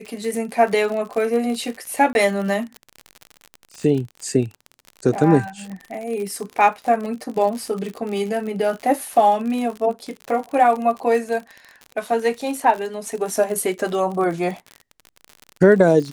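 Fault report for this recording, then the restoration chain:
crackle 58/s -27 dBFS
2.13–2.15 gap 21 ms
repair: de-click; interpolate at 2.13, 21 ms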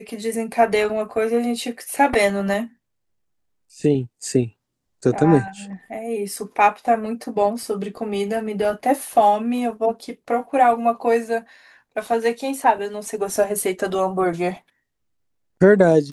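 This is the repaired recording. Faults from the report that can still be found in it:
none

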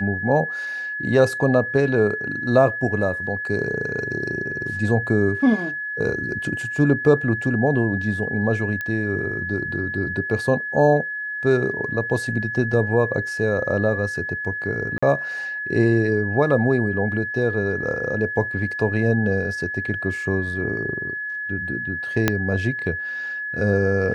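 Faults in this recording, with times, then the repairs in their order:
tone 1700 Hz -26 dBFS
8.81 pop -15 dBFS
14.98–15.03 gap 45 ms
22.28 pop -3 dBFS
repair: de-click; notch 1700 Hz, Q 30; interpolate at 14.98, 45 ms

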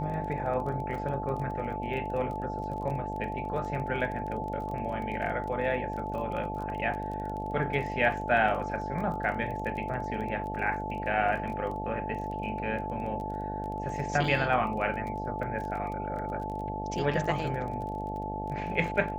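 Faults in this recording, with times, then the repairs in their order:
buzz 50 Hz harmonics 16 -37 dBFS
crackle 22/s -37 dBFS
tone 870 Hz -35 dBFS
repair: de-click; de-hum 50 Hz, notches 16; notch 870 Hz, Q 30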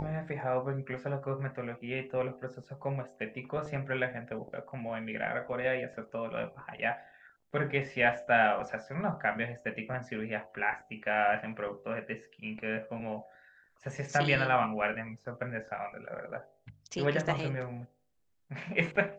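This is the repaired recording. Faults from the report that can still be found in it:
none

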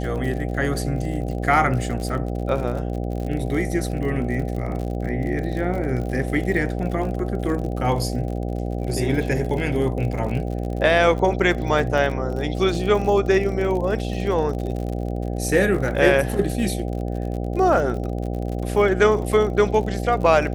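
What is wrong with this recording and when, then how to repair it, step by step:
buzz 60 Hz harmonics 13 -26 dBFS
crackle 52/s -29 dBFS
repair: de-click; de-hum 60 Hz, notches 13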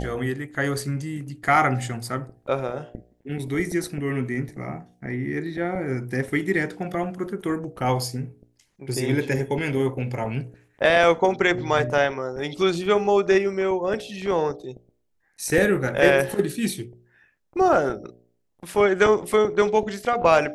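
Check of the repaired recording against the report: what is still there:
none

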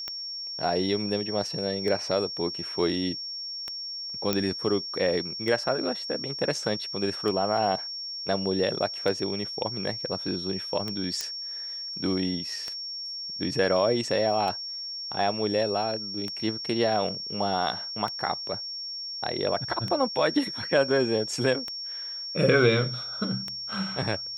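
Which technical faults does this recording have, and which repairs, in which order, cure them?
tick 33 1/3 rpm -18 dBFS
tone 5500 Hz -33 dBFS
4.33 pop -9 dBFS
11.21 pop -15 dBFS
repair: de-click; notch 5500 Hz, Q 30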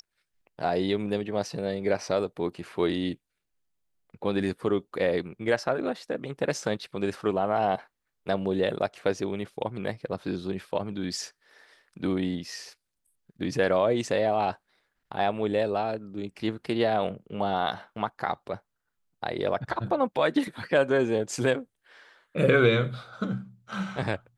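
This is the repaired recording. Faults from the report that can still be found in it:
none

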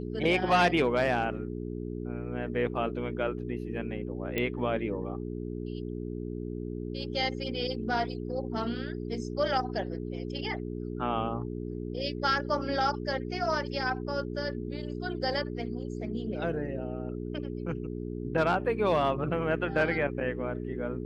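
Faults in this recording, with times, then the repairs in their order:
hum 60 Hz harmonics 7 -36 dBFS
4.38 pop -16 dBFS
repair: de-click; de-hum 60 Hz, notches 7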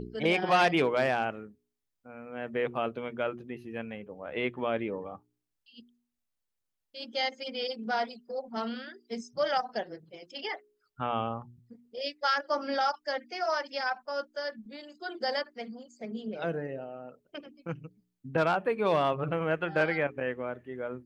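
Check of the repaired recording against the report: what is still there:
none

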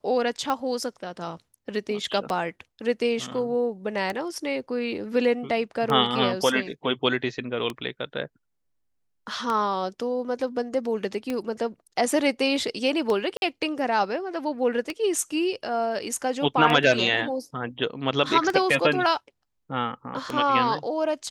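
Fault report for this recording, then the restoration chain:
tick 33 1/3 rpm -14 dBFS
13.37–13.42 gap 51 ms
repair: de-click; interpolate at 13.37, 51 ms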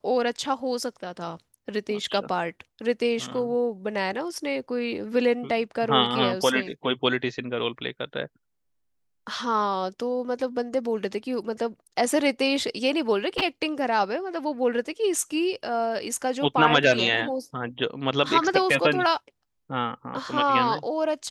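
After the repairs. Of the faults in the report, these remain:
none

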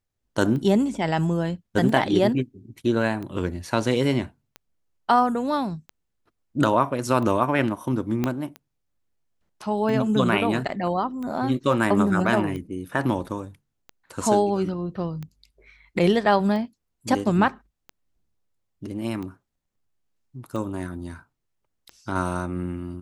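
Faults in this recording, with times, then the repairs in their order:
tick 45 rpm -23 dBFS
8.24 pop -11 dBFS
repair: de-click

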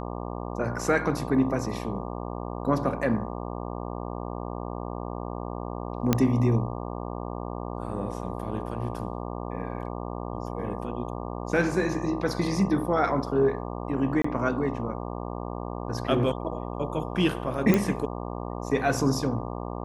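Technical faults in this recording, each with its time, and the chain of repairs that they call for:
buzz 60 Hz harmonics 20 -34 dBFS
6.13 pop -7 dBFS
14.22–14.24 gap 24 ms
17.74 pop -9 dBFS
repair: de-click; de-hum 60 Hz, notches 20; interpolate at 14.22, 24 ms

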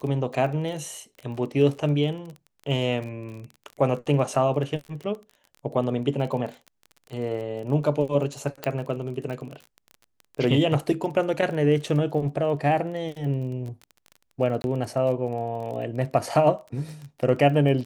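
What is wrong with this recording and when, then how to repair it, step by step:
crackle 25/s -33 dBFS
8.64 pop -13 dBFS
14.62–14.64 gap 21 ms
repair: de-click; interpolate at 14.62, 21 ms

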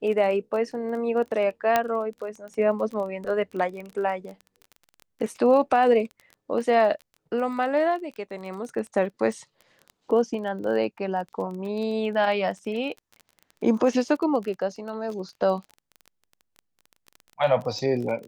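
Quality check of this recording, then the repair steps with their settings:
crackle 21/s -33 dBFS
1.76 pop -7 dBFS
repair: de-click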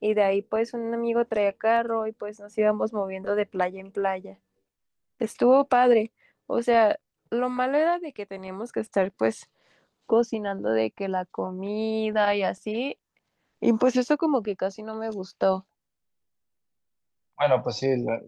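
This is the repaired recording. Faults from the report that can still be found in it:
1.76 pop

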